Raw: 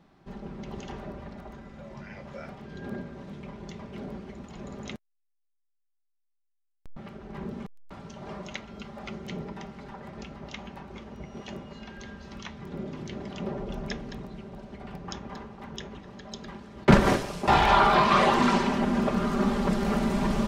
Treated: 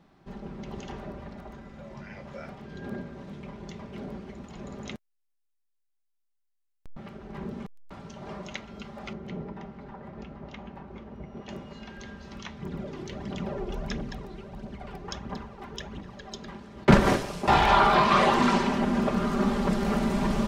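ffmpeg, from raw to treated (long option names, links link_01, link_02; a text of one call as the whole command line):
ffmpeg -i in.wav -filter_complex "[0:a]asettb=1/sr,asplit=3[link_01][link_02][link_03];[link_01]atrim=end=9.134[link_04];[link_02]atrim=start=9.13:end=11.49,asetpts=PTS-STARTPTS,afade=type=in:duration=0.004:curve=qsin,afade=type=out:start_time=2.356:duration=0.004:curve=qsin,lowpass=frequency=1400:poles=1[link_05];[link_03]atrim=start=11.486[link_06];[link_04][link_05]acrossfade=duration=0.004:curve1=hsin:curve2=qsin[link_07];[link_07][link_06]acrossfade=duration=0.004:curve1=qsin:curve2=hsin,asplit=3[link_08][link_09][link_10];[link_08]afade=type=out:start_time=12.61:duration=0.02[link_11];[link_09]aphaser=in_gain=1:out_gain=1:delay=3:decay=0.5:speed=1.5:type=triangular,afade=type=in:start_time=12.61:duration=0.02,afade=type=out:start_time=16.35:duration=0.02[link_12];[link_10]afade=type=in:start_time=16.35:duration=0.02[link_13];[link_11][link_12][link_13]amix=inputs=3:normalize=0" out.wav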